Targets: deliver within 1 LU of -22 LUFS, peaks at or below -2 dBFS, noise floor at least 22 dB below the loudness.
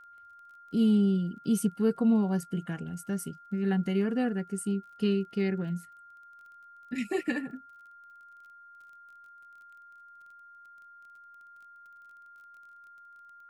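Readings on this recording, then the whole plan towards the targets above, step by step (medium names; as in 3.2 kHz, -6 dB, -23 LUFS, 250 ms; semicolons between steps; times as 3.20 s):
tick rate 25 per s; steady tone 1.4 kHz; tone level -50 dBFS; loudness -29.5 LUFS; peak level -15.5 dBFS; loudness target -22.0 LUFS
-> de-click; band-stop 1.4 kHz, Q 30; trim +7.5 dB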